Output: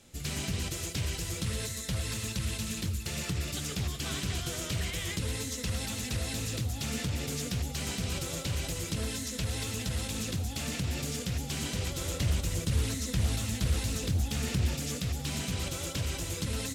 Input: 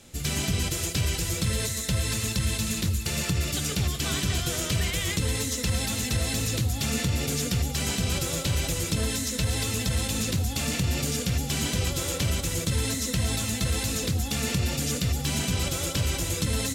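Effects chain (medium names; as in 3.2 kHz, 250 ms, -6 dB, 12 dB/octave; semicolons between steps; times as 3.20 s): 12.00–14.75 s: bass shelf 110 Hz +9 dB; loudspeaker Doppler distortion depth 0.44 ms; trim -6.5 dB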